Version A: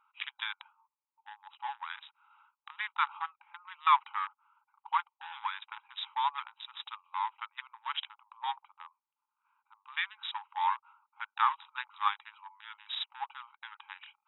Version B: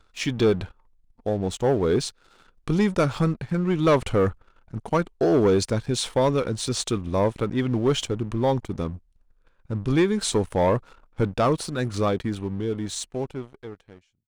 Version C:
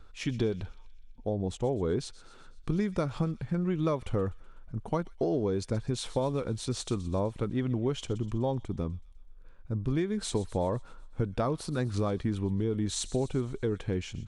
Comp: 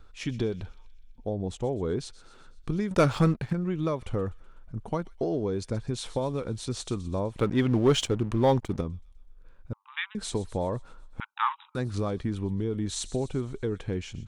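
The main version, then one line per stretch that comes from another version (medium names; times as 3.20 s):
C
2.91–3.53 s: from B
7.39–8.81 s: from B
9.73–10.15 s: from A
11.20–11.75 s: from A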